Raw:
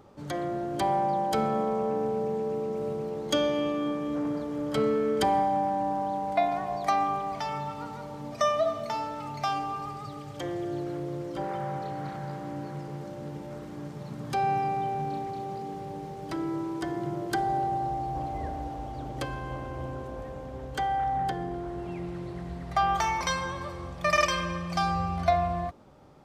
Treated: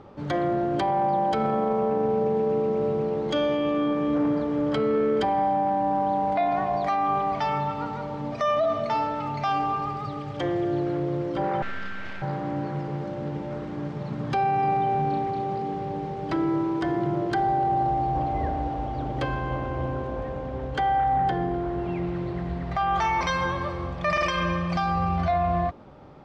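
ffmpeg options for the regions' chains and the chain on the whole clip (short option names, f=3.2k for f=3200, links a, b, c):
-filter_complex "[0:a]asettb=1/sr,asplit=3[a][b][c];[a]atrim=end=11.624[d];[b]atrim=start=11.62:end=12.22,asetpts=PTS-STARTPTS,afade=t=in:d=0.004:c=qsin,afade=t=out:st=0.596:d=0.004:c=qsin,highpass=f=620:w=0.5412,highpass=f=620:w=1.3066,aeval=exprs='abs(val(0))':c=same[e];[c]atrim=start=12.216[f];[d][e]acrossfade=d=0.004:c1=hsin:c2=qsin[g];[g][f]acrossfade=d=0.004:c1=qsin:c2=hsin,lowpass=3.5k,acontrast=82,alimiter=limit=-17dB:level=0:latency=1:release=12"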